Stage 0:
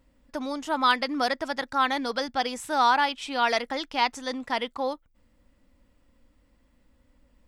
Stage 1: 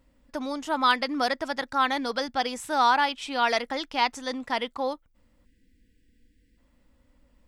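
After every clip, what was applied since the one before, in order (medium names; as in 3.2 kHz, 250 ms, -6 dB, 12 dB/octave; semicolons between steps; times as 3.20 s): spectral selection erased 5.45–6.58 s, 510–1500 Hz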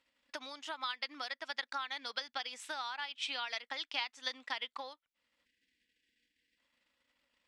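compression 6:1, threshold -31 dBFS, peak gain reduction 14 dB; transient shaper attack +5 dB, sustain -5 dB; band-pass filter 3.1 kHz, Q 1.1; trim +1 dB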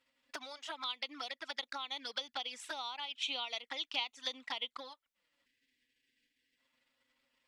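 touch-sensitive flanger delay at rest 7.9 ms, full sweep at -37 dBFS; trim +3 dB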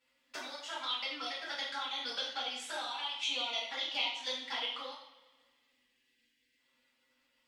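two-slope reverb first 0.64 s, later 1.9 s, from -18 dB, DRR -8 dB; trim -5 dB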